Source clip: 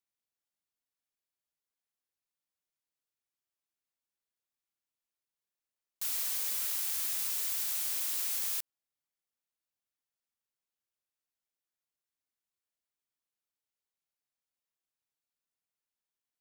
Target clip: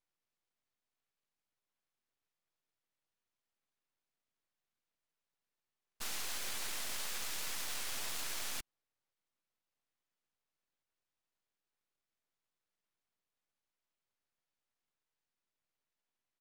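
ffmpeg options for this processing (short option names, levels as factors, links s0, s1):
-filter_complex "[0:a]aemphasis=mode=reproduction:type=50fm,aeval=exprs='max(val(0),0)':c=same,asplit=3[s0][s1][s2];[s1]asetrate=29433,aresample=44100,atempo=1.49831,volume=0.708[s3];[s2]asetrate=52444,aresample=44100,atempo=0.840896,volume=0.251[s4];[s0][s3][s4]amix=inputs=3:normalize=0,volume=2.11"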